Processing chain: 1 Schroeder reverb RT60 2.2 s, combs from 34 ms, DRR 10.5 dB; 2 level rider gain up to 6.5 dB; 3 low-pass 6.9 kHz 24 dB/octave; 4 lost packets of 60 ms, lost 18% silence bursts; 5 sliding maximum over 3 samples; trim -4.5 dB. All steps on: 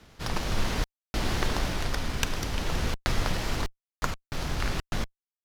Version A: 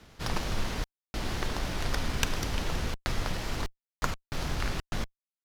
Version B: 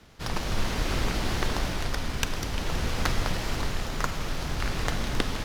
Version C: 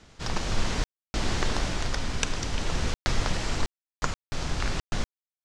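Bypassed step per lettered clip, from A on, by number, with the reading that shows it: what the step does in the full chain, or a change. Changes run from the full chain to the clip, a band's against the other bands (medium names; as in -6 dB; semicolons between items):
2, crest factor change +1.5 dB; 4, crest factor change -1.5 dB; 5, distortion -5 dB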